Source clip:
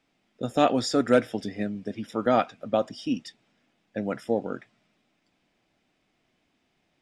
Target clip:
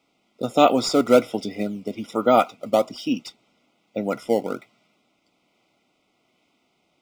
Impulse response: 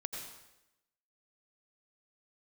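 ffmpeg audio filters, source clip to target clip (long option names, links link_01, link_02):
-filter_complex "[0:a]highpass=frequency=260:poles=1,asplit=2[link_01][link_02];[link_02]acrusher=samples=10:mix=1:aa=0.000001:lfo=1:lforange=16:lforate=1.2,volume=-11.5dB[link_03];[link_01][link_03]amix=inputs=2:normalize=0,asuperstop=centerf=1700:order=20:qfactor=3.7,volume=4.5dB"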